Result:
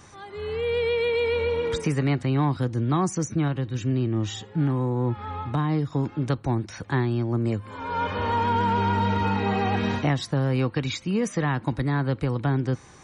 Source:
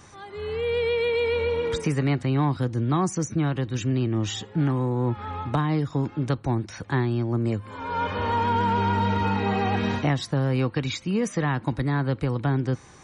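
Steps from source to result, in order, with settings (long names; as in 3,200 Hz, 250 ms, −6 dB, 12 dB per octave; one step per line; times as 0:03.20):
0:03.48–0:05.92: harmonic and percussive parts rebalanced percussive −6 dB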